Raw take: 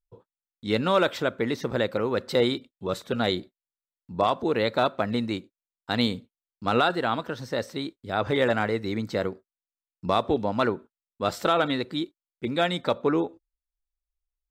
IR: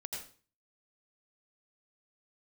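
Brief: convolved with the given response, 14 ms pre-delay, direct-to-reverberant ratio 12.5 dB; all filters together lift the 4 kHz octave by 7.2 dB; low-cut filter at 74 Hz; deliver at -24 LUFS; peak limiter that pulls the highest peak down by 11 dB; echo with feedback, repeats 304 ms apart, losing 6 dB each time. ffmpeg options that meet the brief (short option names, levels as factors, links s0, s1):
-filter_complex "[0:a]highpass=74,equalizer=f=4000:t=o:g=8,alimiter=limit=0.15:level=0:latency=1,aecho=1:1:304|608|912|1216|1520|1824:0.501|0.251|0.125|0.0626|0.0313|0.0157,asplit=2[s0][s1];[1:a]atrim=start_sample=2205,adelay=14[s2];[s1][s2]afir=irnorm=-1:irlink=0,volume=0.266[s3];[s0][s3]amix=inputs=2:normalize=0,volume=1.78"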